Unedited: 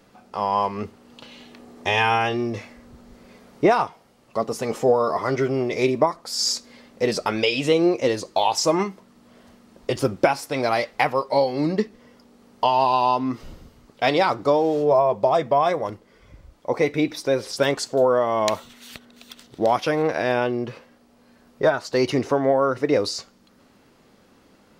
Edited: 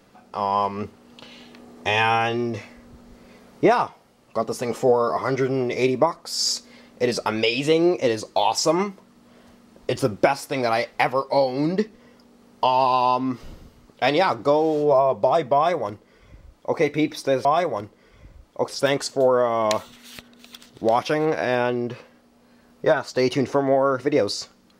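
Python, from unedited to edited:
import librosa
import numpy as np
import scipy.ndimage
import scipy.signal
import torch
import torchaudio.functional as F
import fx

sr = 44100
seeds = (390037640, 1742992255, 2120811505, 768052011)

y = fx.edit(x, sr, fx.duplicate(start_s=15.54, length_s=1.23, to_s=17.45), tone=tone)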